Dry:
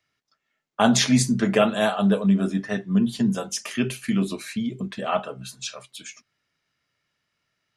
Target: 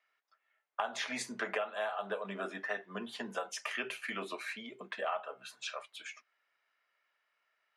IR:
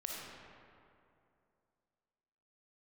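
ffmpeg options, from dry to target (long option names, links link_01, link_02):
-filter_complex "[0:a]highpass=400,acrossover=split=510 2700:gain=0.158 1 0.158[link_01][link_02][link_03];[link_01][link_02][link_03]amix=inputs=3:normalize=0,acompressor=threshold=-33dB:ratio=12,volume=1dB"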